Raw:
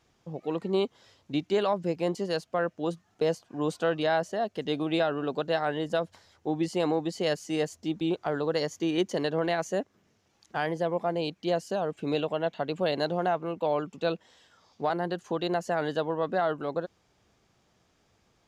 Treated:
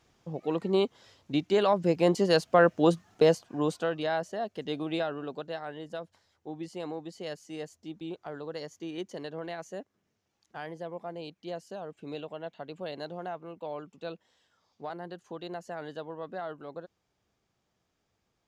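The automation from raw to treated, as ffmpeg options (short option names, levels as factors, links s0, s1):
-af "volume=2.66,afade=t=in:st=1.54:d=1.24:silence=0.421697,afade=t=out:st=2.78:d=1.12:silence=0.237137,afade=t=out:st=4.9:d=0.71:silence=0.473151"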